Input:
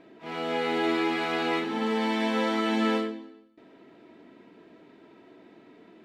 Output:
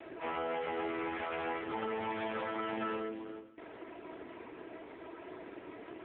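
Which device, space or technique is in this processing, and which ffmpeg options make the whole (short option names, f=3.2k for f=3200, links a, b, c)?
voicemail: -af "highpass=410,lowpass=3k,acompressor=threshold=-44dB:ratio=12,volume=12dB" -ar 8000 -c:a libopencore_amrnb -b:a 5150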